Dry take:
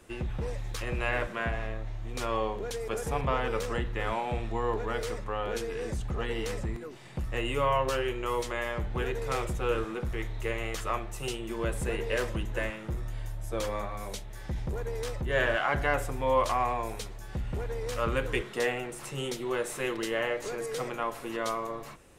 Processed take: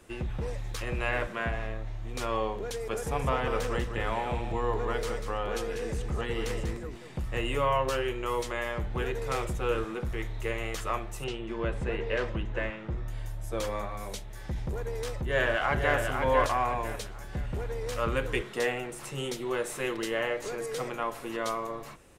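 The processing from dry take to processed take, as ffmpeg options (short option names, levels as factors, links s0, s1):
-filter_complex "[0:a]asettb=1/sr,asplit=3[s0][s1][s2];[s0]atrim=end=3.004[s3];[s1]atrim=start=3:end=7.57,asetpts=PTS-STARTPTS,afade=t=in:d=0.004:c=qsin,afade=t=out:st=4.566:d=0.004:c=qsin,aecho=1:1:193:0.398,atrim=end_sample=201537[s4];[s2]atrim=start=7.566[s5];[s3][s4]acrossfade=d=0.004:c1=hsin:c2=qsin[s6];[s6][s5]acrossfade=d=0.004:c1=qsin:c2=hsin,asettb=1/sr,asplit=3[s7][s8][s9];[s7]atrim=end=11.244[s10];[s8]atrim=start=11.24:end=13.08,asetpts=PTS-STARTPTS,afade=t=in:d=0.004:c=qsin,afade=t=out:st=1.836:d=0.004:c=qsin,lowpass=3600[s11];[s9]atrim=start=13.076[s12];[s10][s11]acrossfade=d=0.004:c1=hsin:c2=qsin[s13];[s13][s12]acrossfade=d=0.004:c1=qsin:c2=hsin,asplit=2[s14][s15];[s15]afade=t=in:st=15.11:d=0.01,afade=t=out:st=15.96:d=0.01,aecho=0:1:500|1000|1500|2000:0.595662|0.208482|0.0729686|0.025539[s16];[s14][s16]amix=inputs=2:normalize=0"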